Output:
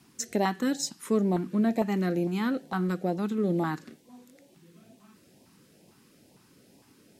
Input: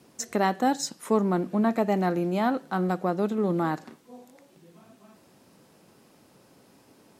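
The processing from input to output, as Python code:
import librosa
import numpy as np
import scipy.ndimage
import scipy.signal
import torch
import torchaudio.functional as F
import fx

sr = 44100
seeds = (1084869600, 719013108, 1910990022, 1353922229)

y = fx.filter_lfo_notch(x, sr, shape='saw_up', hz=2.2, low_hz=460.0, high_hz=1500.0, q=0.79)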